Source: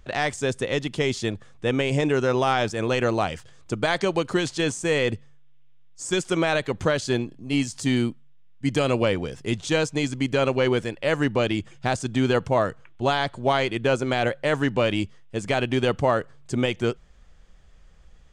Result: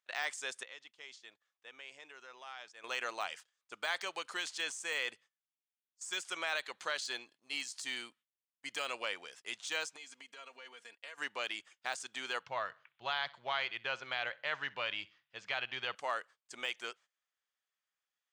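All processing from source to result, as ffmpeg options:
ffmpeg -i in.wav -filter_complex "[0:a]asettb=1/sr,asplit=3[link_01][link_02][link_03];[link_01]atrim=end=0.634[link_04];[link_02]atrim=start=0.63:end=2.84,asetpts=PTS-STARTPTS,afade=type=in:duration=0.004:curve=qsin,afade=type=out:start_time=2.206:duration=0.004:curve=qsin,lowpass=6900,acompressor=threshold=-43dB:ratio=2:attack=3.2:release=140:knee=1:detection=peak[link_05];[link_03]atrim=start=2.836[link_06];[link_04][link_05]acrossfade=duration=0.004:curve1=hsin:curve2=qsin[link_07];[link_07][link_06]acrossfade=duration=0.004:curve1=qsin:curve2=hsin,asettb=1/sr,asplit=3[link_08][link_09][link_10];[link_08]atrim=end=6.574[link_11];[link_09]atrim=start=6.57:end=7.82,asetpts=PTS-STARTPTS,afade=type=in:duration=0.004:curve=qsin,afade=type=out:start_time=1.246:duration=0.004:curve=qsin,deesser=0.3,equalizer=frequency=4200:width=4.8:gain=5.5[link_12];[link_10]atrim=start=7.816[link_13];[link_11][link_12]acrossfade=duration=0.004:curve1=hsin:curve2=qsin[link_14];[link_14][link_13]acrossfade=duration=0.004:curve1=qsin:curve2=hsin,asettb=1/sr,asplit=3[link_15][link_16][link_17];[link_15]atrim=end=9.964[link_18];[link_16]atrim=start=9.96:end=11.18,asetpts=PTS-STARTPTS,afade=type=in:duration=0.004:curve=qsin,afade=type=out:start_time=1.216:duration=0.004:curve=qsin,agate=range=-33dB:threshold=-34dB:ratio=3:release=100:detection=peak,aecho=1:1:4.3:0.67,atrim=end_sample=53802,acompressor=threshold=-31dB:ratio=20:attack=3.2:release=140:knee=1:detection=peak[link_19];[link_17]atrim=start=11.176[link_20];[link_18][link_19]acrossfade=duration=0.004:curve1=hsin:curve2=qsin[link_21];[link_21][link_20]acrossfade=duration=0.004:curve1=qsin:curve2=hsin,asettb=1/sr,asplit=3[link_22][link_23][link_24];[link_22]atrim=end=12.434[link_25];[link_23]atrim=start=12.43:end=15.95,asetpts=PTS-STARTPTS,afade=type=in:duration=0.004:curve=qsin,afade=type=out:start_time=3.516:duration=0.004:curve=qsin,lowpass=frequency=4800:width=0.5412,lowpass=frequency=4800:width=1.3066,lowshelf=frequency=190:width_type=q:width=1.5:gain=12,aecho=1:1:63|126|189:0.0794|0.0286|0.0103,atrim=end_sample=155232[link_26];[link_24]atrim=start=15.946[link_27];[link_25][link_26]acrossfade=duration=0.004:curve1=hsin:curve2=qsin[link_28];[link_28][link_27]acrossfade=duration=0.004:curve1=qsin:curve2=hsin,agate=range=-17dB:threshold=-39dB:ratio=16:detection=peak,deesser=0.65,highpass=1200,volume=-7dB" out.wav

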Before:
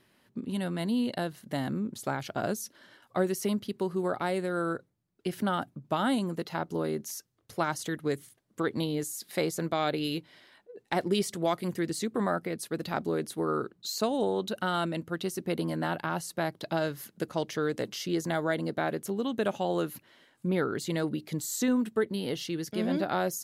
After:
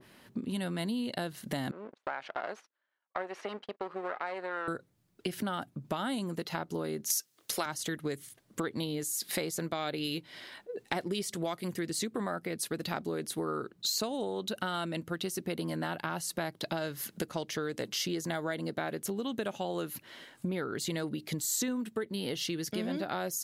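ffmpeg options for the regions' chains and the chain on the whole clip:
ffmpeg -i in.wav -filter_complex "[0:a]asettb=1/sr,asplit=3[link_01][link_02][link_03];[link_01]atrim=end=1.714[link_04];[link_02]atrim=start=1.71:end=4.68,asetpts=PTS-STARTPTS,afade=type=in:duration=0.004:curve=qsin,afade=type=out:start_time=2.966:duration=0.004:curve=qsin,aeval=exprs='if(lt(val(0),0),0.251*val(0),val(0))':channel_layout=same,highpass=610,lowpass=2100,agate=range=-31dB:threshold=-57dB:ratio=16:release=100:detection=peak[link_05];[link_03]atrim=start=4.676[link_06];[link_04][link_05]acrossfade=duration=0.004:curve1=hsin:curve2=qsin[link_07];[link_07][link_06]acrossfade=duration=0.004:curve1=qsin:curve2=hsin,asettb=1/sr,asplit=3[link_08][link_09][link_10];[link_08]atrim=end=7.104[link_11];[link_09]atrim=start=7.1:end=7.66,asetpts=PTS-STARTPTS,afade=type=in:duration=0.004:curve=qsin,afade=type=out:start_time=0.556:duration=0.004:curve=qsin,highpass=250,highshelf=frequency=2200:gain=11[link_12];[link_10]atrim=start=7.656[link_13];[link_11][link_12]acrossfade=duration=0.004:curve1=hsin:curve2=qsin[link_14];[link_14][link_13]acrossfade=duration=0.004:curve1=qsin:curve2=hsin,acompressor=threshold=-43dB:ratio=4,adynamicequalizer=threshold=0.00141:dfrequency=1600:dqfactor=0.7:tfrequency=1600:tqfactor=0.7:attack=5:release=100:ratio=0.375:range=2:mode=boostabove:tftype=highshelf,volume=8.5dB" out.wav

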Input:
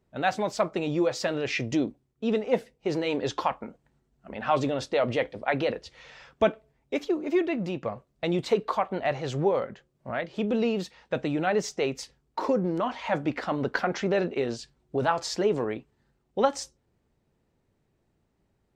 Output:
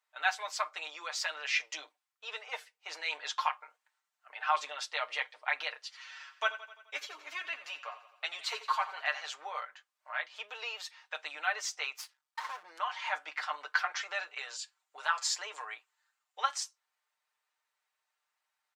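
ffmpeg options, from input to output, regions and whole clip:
ffmpeg -i in.wav -filter_complex "[0:a]asettb=1/sr,asplit=3[link_01][link_02][link_03];[link_01]atrim=end=5.834[link_04];[link_02]atrim=start=5.83:end=9.25,asetpts=PTS-STARTPTS,afade=type=in:duration=0.004:curve=qsin,afade=type=out:start_time=3.416:duration=0.004:curve=qsin,aecho=1:1:7.3:0.65,atrim=end_sample=150822,aecho=1:1:86|172|258|344|430|516:0.2|0.116|0.0671|0.0389|0.0226|0.0131,atrim=end_sample=150822[link_05];[link_03]atrim=start=9.246[link_06];[link_04][link_05]acrossfade=duration=0.004:curve1=hsin:curve2=qsin[link_07];[link_07][link_06]acrossfade=duration=0.004:curve1=qsin:curve2=hsin,asettb=1/sr,asplit=3[link_08][link_09][link_10];[link_08]atrim=end=11.964[link_11];[link_09]atrim=start=11.96:end=12.63,asetpts=PTS-STARTPTS,afade=type=in:duration=0.004:curve=qsin,afade=type=out:start_time=0.666:duration=0.004:curve=qsin,asubboost=boost=10:cutoff=170,aeval=exprs='max(val(0),0)':channel_layout=same[link_12];[link_10]atrim=start=12.626[link_13];[link_11][link_12]acrossfade=duration=0.004:curve1=hsin:curve2=qsin[link_14];[link_14][link_13]acrossfade=duration=0.004:curve1=qsin:curve2=hsin,asettb=1/sr,asplit=3[link_15][link_16][link_17];[link_15]atrim=end=14.024[link_18];[link_16]atrim=start=14.02:end=16.43,asetpts=PTS-STARTPTS,afade=type=in:duration=0.004:curve=qsin,afade=type=out:start_time=2.406:duration=0.004:curve=qsin,highpass=frequency=300:poles=1,equalizer=frequency=7200:width=6.8:gain=8.5[link_19];[link_17]atrim=start=16.426[link_20];[link_18][link_19]acrossfade=duration=0.004:curve1=hsin:curve2=qsin[link_21];[link_21][link_20]acrossfade=duration=0.004:curve1=qsin:curve2=hsin,highpass=frequency=1000:width=0.5412,highpass=frequency=1000:width=1.3066,aecho=1:1:6.6:0.76,volume=-2dB" out.wav

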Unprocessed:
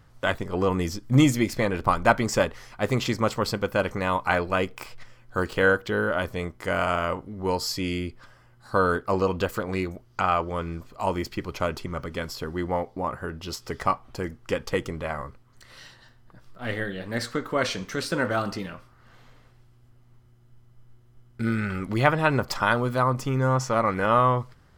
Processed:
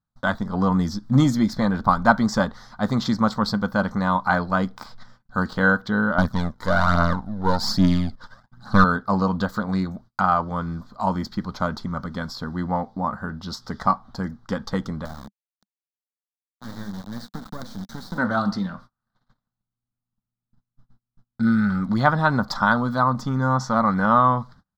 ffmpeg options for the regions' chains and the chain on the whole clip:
ffmpeg -i in.wav -filter_complex "[0:a]asettb=1/sr,asplit=3[link_01][link_02][link_03];[link_01]atrim=end=6.184[link_04];[link_02]atrim=start=6.18:end=8.84,asetpts=PTS-STARTPTS,afade=type=in:duration=0.004:curve=qsin,afade=type=out:start_time=2.656:duration=0.004:curve=qsin,aeval=exprs='if(lt(val(0),0),0.251*val(0),val(0))':channel_layout=same,acontrast=37,aphaser=in_gain=1:out_gain=1:delay=2.3:decay=0.51:speed=1.2:type=triangular[link_05];[link_03]atrim=start=8.836[link_06];[link_04][link_05]acrossfade=duration=0.004:curve1=hsin:curve2=qsin[link_07];[link_07][link_06]acrossfade=duration=0.004:curve1=qsin:curve2=hsin,asettb=1/sr,asplit=3[link_08][link_09][link_10];[link_08]atrim=end=15.054[link_11];[link_09]atrim=start=15.05:end=18.18,asetpts=PTS-STARTPTS,afade=type=in:duration=0.004:curve=qsin,afade=type=out:start_time=3.126:duration=0.004:curve=qsin,acrusher=bits=3:dc=4:mix=0:aa=0.000001,acrossover=split=520|7400[link_12][link_13][link_14];[link_12]acompressor=threshold=-31dB:ratio=4[link_15];[link_13]acompressor=threshold=-44dB:ratio=4[link_16];[link_14]acompressor=threshold=-44dB:ratio=4[link_17];[link_15][link_16][link_17]amix=inputs=3:normalize=0[link_18];[link_10]atrim=start=18.176[link_19];[link_11][link_18]acrossfade=duration=0.004:curve1=hsin:curve2=qsin[link_20];[link_20][link_19]acrossfade=duration=0.004:curve1=qsin:curve2=hsin,aemphasis=mode=production:type=50kf,agate=range=-32dB:threshold=-47dB:ratio=16:detection=peak,firequalizer=gain_entry='entry(130,0);entry(200,12);entry(360,-8);entry(770,4);entry(1500,3);entry(2600,-21);entry(3700,2);entry(9100,-22)':delay=0.05:min_phase=1" out.wav

